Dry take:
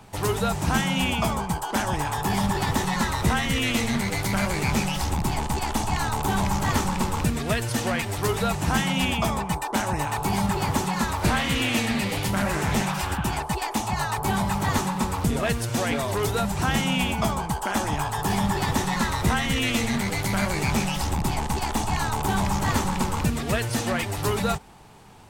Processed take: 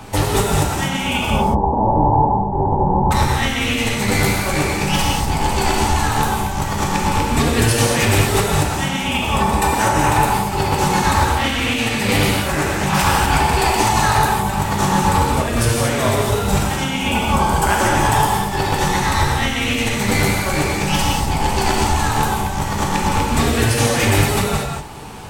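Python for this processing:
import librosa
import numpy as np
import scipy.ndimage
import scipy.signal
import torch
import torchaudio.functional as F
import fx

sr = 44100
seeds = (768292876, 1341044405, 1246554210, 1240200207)

y = fx.steep_lowpass(x, sr, hz=980.0, slope=72, at=(1.3, 3.11))
y = fx.over_compress(y, sr, threshold_db=-28.0, ratio=-0.5)
y = fx.rev_gated(y, sr, seeds[0], gate_ms=260, shape='flat', drr_db=-2.5)
y = F.gain(torch.from_numpy(y), 7.5).numpy()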